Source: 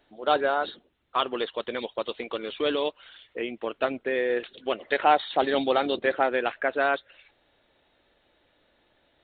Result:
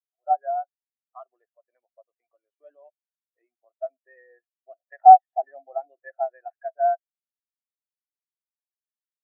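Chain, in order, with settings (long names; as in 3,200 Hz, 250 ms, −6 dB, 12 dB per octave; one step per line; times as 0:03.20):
loudspeaker in its box 440–2,600 Hz, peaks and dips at 460 Hz −8 dB, 700 Hz +10 dB, 1,800 Hz +4 dB
every bin expanded away from the loudest bin 2.5 to 1
level +4 dB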